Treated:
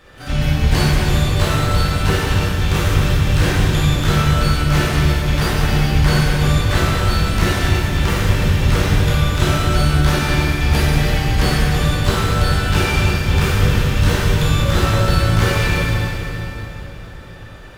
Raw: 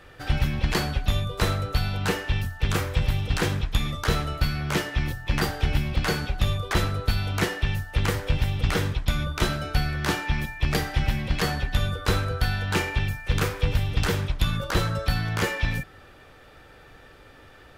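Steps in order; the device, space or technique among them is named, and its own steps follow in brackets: shimmer-style reverb (harmoniser +12 st -10 dB; reverb RT60 3.6 s, pre-delay 14 ms, DRR -7.5 dB)

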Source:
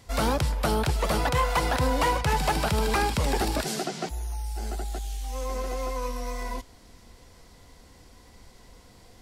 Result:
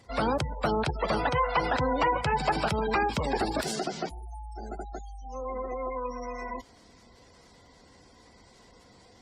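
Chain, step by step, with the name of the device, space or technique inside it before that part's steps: noise-suppressed video call (HPF 150 Hz 6 dB/oct; spectral gate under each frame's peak -20 dB strong; Opus 32 kbps 48000 Hz)

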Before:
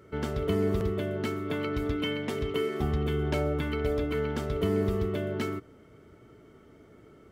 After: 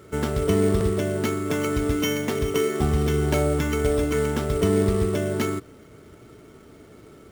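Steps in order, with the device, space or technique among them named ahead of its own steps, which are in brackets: early companding sampler (sample-rate reducer 8800 Hz, jitter 0%; companded quantiser 6-bit); gain +6.5 dB

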